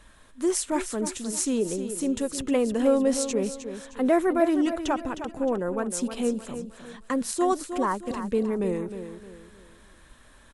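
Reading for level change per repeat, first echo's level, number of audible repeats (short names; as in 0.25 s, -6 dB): -9.0 dB, -10.0 dB, 3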